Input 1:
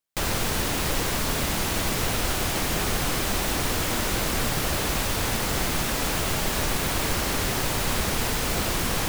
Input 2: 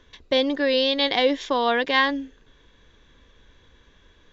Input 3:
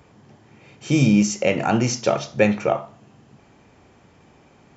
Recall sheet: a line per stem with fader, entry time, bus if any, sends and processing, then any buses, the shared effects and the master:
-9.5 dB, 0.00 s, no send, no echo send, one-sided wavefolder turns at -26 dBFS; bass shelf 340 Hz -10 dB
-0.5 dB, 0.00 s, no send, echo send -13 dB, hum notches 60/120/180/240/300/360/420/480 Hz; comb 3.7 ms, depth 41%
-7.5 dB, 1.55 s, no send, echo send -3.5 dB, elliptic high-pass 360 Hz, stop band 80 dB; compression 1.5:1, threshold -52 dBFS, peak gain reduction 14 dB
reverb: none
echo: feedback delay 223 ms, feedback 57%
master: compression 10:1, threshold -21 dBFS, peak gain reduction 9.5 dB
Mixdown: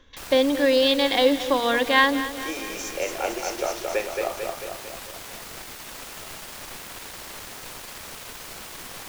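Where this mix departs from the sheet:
stem 3: missing compression 1.5:1, threshold -52 dBFS, peak gain reduction 14 dB; master: missing compression 10:1, threshold -21 dBFS, peak gain reduction 9.5 dB

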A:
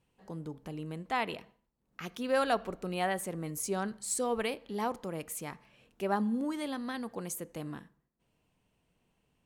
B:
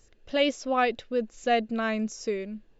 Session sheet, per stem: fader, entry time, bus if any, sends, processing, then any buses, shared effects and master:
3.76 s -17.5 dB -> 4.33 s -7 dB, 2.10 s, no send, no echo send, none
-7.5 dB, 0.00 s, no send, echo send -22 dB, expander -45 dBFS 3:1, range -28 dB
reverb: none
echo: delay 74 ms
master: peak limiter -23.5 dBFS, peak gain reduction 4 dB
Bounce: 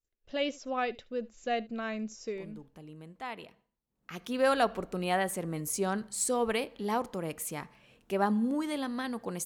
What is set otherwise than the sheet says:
stem A -17.5 dB -> -8.0 dB; master: missing peak limiter -23.5 dBFS, peak gain reduction 4 dB

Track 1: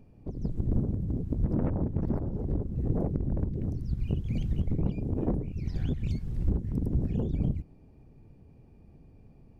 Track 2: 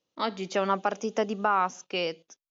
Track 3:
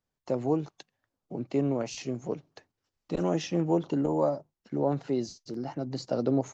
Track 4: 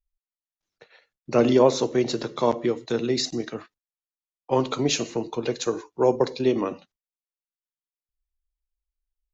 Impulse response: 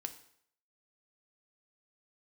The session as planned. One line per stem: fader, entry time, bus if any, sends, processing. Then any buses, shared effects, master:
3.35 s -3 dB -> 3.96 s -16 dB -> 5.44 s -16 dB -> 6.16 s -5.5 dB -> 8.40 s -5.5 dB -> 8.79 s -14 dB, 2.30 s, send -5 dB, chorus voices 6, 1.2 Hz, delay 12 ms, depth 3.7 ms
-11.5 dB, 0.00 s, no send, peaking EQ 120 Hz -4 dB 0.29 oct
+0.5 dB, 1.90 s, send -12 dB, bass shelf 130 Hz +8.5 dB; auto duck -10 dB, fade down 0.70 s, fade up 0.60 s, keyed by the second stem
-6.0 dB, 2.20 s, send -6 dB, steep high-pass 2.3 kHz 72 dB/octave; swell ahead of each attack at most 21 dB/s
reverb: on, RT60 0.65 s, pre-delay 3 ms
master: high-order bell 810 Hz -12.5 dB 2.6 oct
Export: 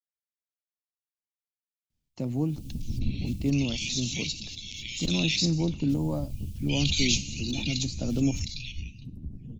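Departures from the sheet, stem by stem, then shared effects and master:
stem 2: muted; stem 4: send -6 dB -> 0 dB

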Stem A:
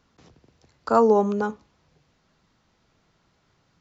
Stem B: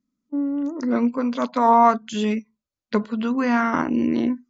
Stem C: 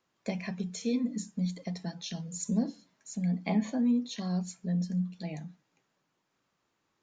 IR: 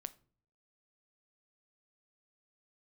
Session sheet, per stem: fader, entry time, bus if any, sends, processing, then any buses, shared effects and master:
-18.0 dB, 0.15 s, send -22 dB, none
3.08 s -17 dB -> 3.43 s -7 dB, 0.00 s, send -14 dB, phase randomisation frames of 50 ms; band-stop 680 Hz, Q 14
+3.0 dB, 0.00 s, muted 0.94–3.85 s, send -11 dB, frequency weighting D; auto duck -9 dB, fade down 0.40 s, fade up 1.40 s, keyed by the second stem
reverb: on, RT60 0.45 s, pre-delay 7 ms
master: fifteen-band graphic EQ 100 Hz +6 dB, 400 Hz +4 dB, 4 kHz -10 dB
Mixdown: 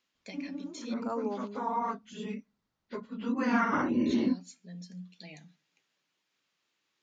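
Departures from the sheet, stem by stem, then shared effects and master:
stem C +3.0 dB -> -8.5 dB; master: missing fifteen-band graphic EQ 100 Hz +6 dB, 400 Hz +4 dB, 4 kHz -10 dB

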